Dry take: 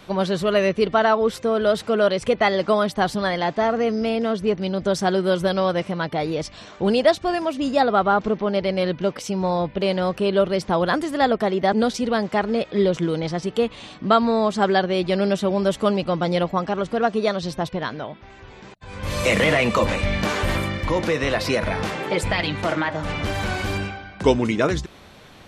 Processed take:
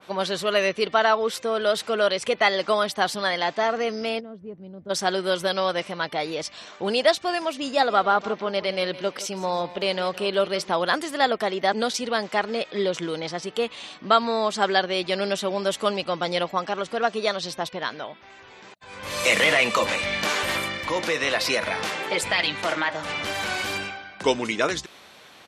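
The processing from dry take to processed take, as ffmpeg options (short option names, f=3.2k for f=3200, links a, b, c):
-filter_complex "[0:a]asplit=3[a][b][c];[a]afade=t=out:st=4.19:d=0.02[d];[b]bandpass=f=100:t=q:w=0.99,afade=t=in:st=4.19:d=0.02,afade=t=out:st=4.89:d=0.02[e];[c]afade=t=in:st=4.89:d=0.02[f];[d][e][f]amix=inputs=3:normalize=0,asplit=3[g][h][i];[g]afade=t=out:st=7.72:d=0.02[j];[h]aecho=1:1:165|330|495:0.158|0.0444|0.0124,afade=t=in:st=7.72:d=0.02,afade=t=out:st=10.71:d=0.02[k];[i]afade=t=in:st=10.71:d=0.02[l];[j][k][l]amix=inputs=3:normalize=0,highpass=f=630:p=1,adynamicequalizer=threshold=0.0251:dfrequency=2000:dqfactor=0.7:tfrequency=2000:tqfactor=0.7:attack=5:release=100:ratio=0.375:range=2:mode=boostabove:tftype=highshelf"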